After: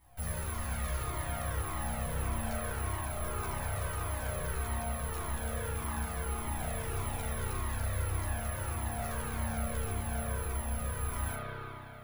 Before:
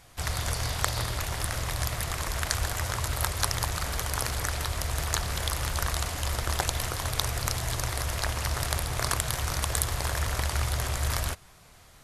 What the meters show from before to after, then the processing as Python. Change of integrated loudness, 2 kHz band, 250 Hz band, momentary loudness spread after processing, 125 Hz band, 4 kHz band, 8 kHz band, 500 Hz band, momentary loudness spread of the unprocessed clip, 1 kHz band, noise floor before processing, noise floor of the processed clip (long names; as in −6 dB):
−6.5 dB, −8.0 dB, 0.0 dB, 2 LU, −5.0 dB, −16.5 dB, −9.5 dB, −3.0 dB, 3 LU, −5.5 dB, −54 dBFS, −42 dBFS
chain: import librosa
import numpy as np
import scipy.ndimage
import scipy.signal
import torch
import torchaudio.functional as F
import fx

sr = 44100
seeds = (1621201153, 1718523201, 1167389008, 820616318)

p1 = fx.quant_companded(x, sr, bits=2)
p2 = x + (p1 * librosa.db_to_amplitude(-7.0))
p3 = fx.air_absorb(p2, sr, metres=100.0)
p4 = fx.doubler(p3, sr, ms=13.0, db=-4)
p5 = 10.0 ** (-22.0 / 20.0) * np.tanh(p4 / 10.0 ** (-22.0 / 20.0))
p6 = (np.kron(p5[::4], np.eye(4)[0]) * 4)[:len(p5)]
p7 = p6 + fx.room_flutter(p6, sr, wall_m=6.8, rt60_s=0.29, dry=0)
p8 = fx.rev_spring(p7, sr, rt60_s=3.3, pass_ms=(31,), chirp_ms=50, drr_db=-6.5)
p9 = fx.rider(p8, sr, range_db=10, speed_s=0.5)
p10 = fx.high_shelf(p9, sr, hz=2100.0, db=-11.0)
p11 = fx.comb_cascade(p10, sr, direction='falling', hz=1.7)
y = p11 * librosa.db_to_amplitude(-9.0)